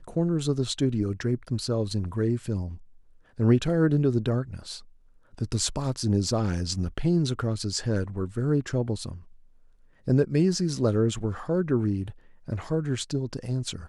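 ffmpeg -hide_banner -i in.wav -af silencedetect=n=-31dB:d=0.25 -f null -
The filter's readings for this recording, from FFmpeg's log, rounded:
silence_start: 2.72
silence_end: 3.40 | silence_duration: 0.68
silence_start: 4.76
silence_end: 5.38 | silence_duration: 0.62
silence_start: 9.11
silence_end: 10.08 | silence_duration: 0.96
silence_start: 12.10
silence_end: 12.48 | silence_duration: 0.38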